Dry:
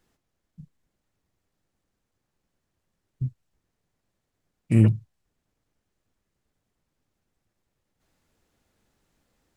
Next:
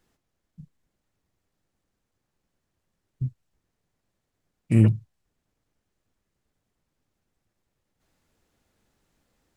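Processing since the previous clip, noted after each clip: nothing audible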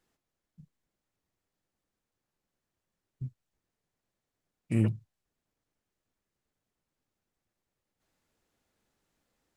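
low shelf 180 Hz -6 dB; gain -5.5 dB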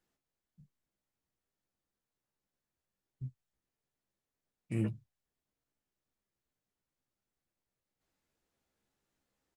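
doubler 15 ms -7 dB; gain -6.5 dB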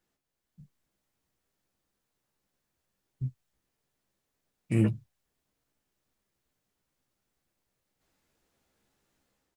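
AGC gain up to 6 dB; gain +2.5 dB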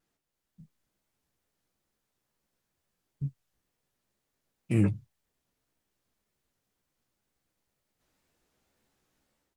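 wow and flutter 140 cents

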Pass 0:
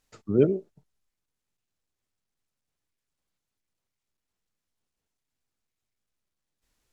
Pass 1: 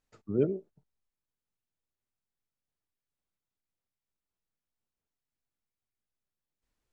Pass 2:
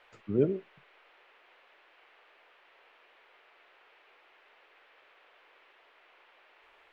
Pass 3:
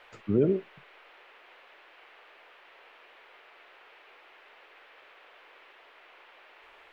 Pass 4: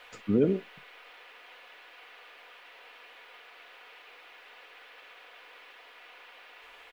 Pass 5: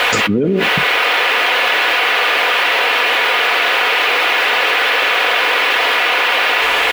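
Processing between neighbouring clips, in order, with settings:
high shelf 2600 Hz -7 dB; gain -6.5 dB
band noise 380–2800 Hz -63 dBFS; gain +1 dB
limiter -21 dBFS, peak gain reduction 6.5 dB; gain +6.5 dB
high shelf 3200 Hz +10 dB; comb 4.1 ms, depth 40%
HPF 52 Hz; fast leveller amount 100%; gain +6 dB

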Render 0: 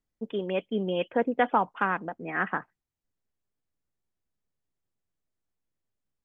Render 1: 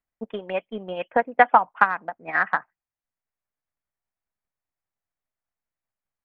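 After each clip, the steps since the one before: band shelf 1200 Hz +10.5 dB 2.3 oct; transient shaper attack +11 dB, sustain -1 dB; gain -9.5 dB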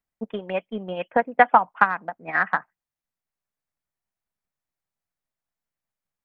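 bell 180 Hz +4.5 dB 0.88 oct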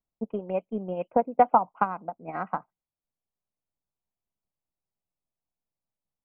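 running mean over 25 samples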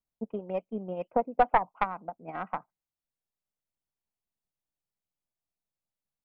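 tracing distortion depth 0.11 ms; gain -3.5 dB

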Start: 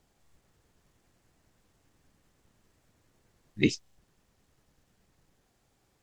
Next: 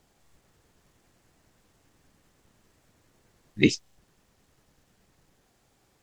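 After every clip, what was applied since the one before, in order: low shelf 130 Hz -3.5 dB; gain +5 dB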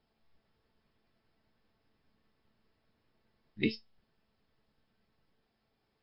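resonator 220 Hz, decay 0.16 s, harmonics all, mix 70%; gain -3.5 dB; MP3 32 kbps 12000 Hz

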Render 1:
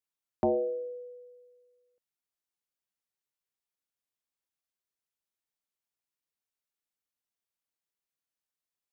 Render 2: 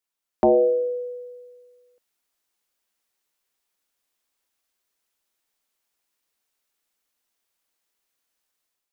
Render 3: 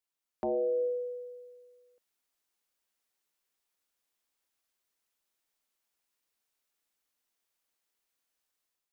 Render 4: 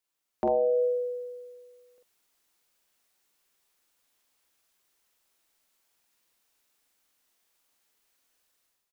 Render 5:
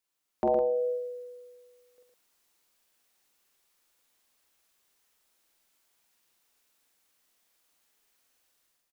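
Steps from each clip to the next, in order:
bell 120 Hz -13.5 dB 0.92 oct; AGC gain up to 8 dB; gain +5.5 dB
limiter -21 dBFS, peak gain reduction 11 dB; gain -5 dB
AGC gain up to 4 dB; doubler 46 ms -3 dB; gain +4 dB
echo 0.113 s -5 dB

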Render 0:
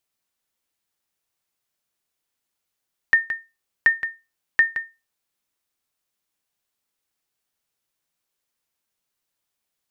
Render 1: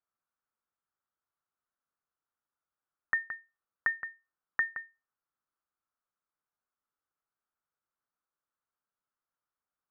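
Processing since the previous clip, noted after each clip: ladder low-pass 1500 Hz, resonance 60%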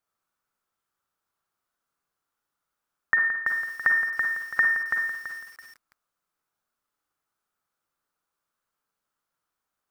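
Schroeder reverb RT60 0.52 s, DRR 3 dB; lo-fi delay 0.332 s, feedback 35%, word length 9-bit, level -4 dB; gain +7 dB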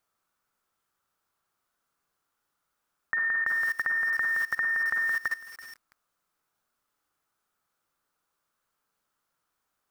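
level quantiser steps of 18 dB; gain +9 dB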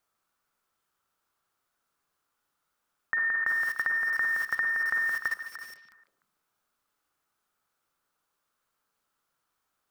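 notches 60/120/180 Hz; delay with a stepping band-pass 0.149 s, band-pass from 3200 Hz, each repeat -1.4 oct, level -6 dB

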